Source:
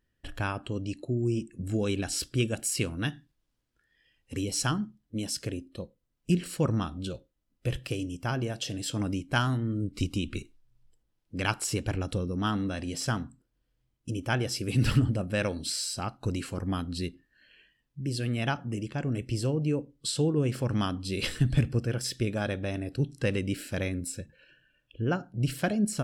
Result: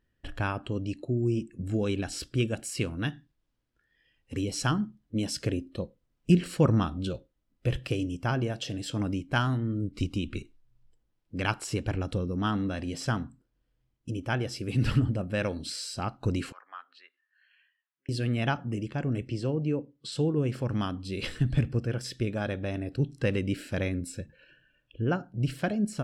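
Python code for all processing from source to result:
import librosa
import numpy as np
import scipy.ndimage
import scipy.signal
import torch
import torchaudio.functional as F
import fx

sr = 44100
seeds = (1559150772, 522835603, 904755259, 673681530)

y = fx.chain(x, sr, fx.env_lowpass_down(base_hz=2000.0, full_db=-28.5),
    fx.ladder_highpass(hz=1000.0, resonance_pct=30),
    fx.high_shelf(hz=4100.0, db=-8.5), at=(16.52, 18.09))
y = fx.chain(y, sr, fx.highpass(hz=120.0, slope=12),
    fx.air_absorb(metres=57.0), at=(19.28, 20.12))
y = fx.lowpass(y, sr, hz=3600.0, slope=6)
y = fx.rider(y, sr, range_db=10, speed_s=2.0)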